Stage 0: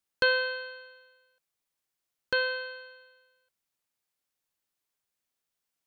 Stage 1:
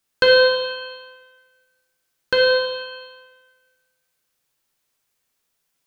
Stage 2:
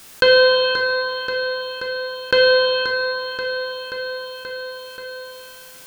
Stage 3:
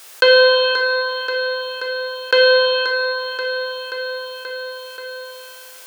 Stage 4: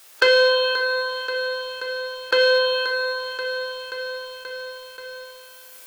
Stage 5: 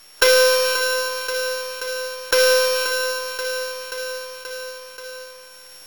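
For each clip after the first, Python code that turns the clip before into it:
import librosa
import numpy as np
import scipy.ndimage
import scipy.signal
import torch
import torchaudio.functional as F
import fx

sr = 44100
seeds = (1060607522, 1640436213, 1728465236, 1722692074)

y1 = fx.rev_plate(x, sr, seeds[0], rt60_s=1.3, hf_ratio=1.0, predelay_ms=0, drr_db=0.5)
y1 = F.gain(torch.from_numpy(y1), 8.5).numpy()
y2 = fx.echo_feedback(y1, sr, ms=531, feedback_pct=52, wet_db=-15.5)
y2 = fx.env_flatten(y2, sr, amount_pct=50)
y3 = scipy.signal.sosfilt(scipy.signal.butter(4, 410.0, 'highpass', fs=sr, output='sos'), y2)
y3 = F.gain(torch.from_numpy(y3), 2.0).numpy()
y4 = fx.noise_reduce_blind(y3, sr, reduce_db=8)
y4 = fx.leveller(y4, sr, passes=1)
y5 = np.r_[np.sort(y4[:len(y4) // 8 * 8].reshape(-1, 8), axis=1).ravel(), y4[len(y4) // 8 * 8:]]
y5 = np.repeat(y5[::2], 2)[:len(y5)]
y5 = F.gain(torch.from_numpy(y5), 1.5).numpy()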